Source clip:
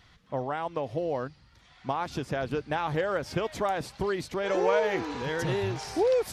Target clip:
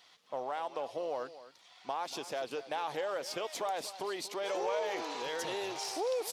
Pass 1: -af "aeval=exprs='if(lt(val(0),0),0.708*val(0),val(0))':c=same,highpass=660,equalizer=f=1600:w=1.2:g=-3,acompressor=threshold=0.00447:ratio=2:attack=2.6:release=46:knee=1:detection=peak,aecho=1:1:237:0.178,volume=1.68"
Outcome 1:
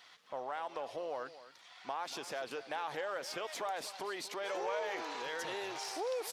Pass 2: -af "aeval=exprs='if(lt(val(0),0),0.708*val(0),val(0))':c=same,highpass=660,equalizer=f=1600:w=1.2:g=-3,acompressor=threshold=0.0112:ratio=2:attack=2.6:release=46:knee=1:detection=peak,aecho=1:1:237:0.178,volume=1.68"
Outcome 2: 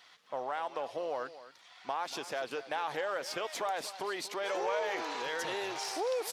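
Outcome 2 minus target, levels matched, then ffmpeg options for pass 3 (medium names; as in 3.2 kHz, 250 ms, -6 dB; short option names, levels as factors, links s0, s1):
2 kHz band +3.5 dB
-af "aeval=exprs='if(lt(val(0),0),0.708*val(0),val(0))':c=same,highpass=660,equalizer=f=1600:w=1.2:g=-10,acompressor=threshold=0.0112:ratio=2:attack=2.6:release=46:knee=1:detection=peak,aecho=1:1:237:0.178,volume=1.68"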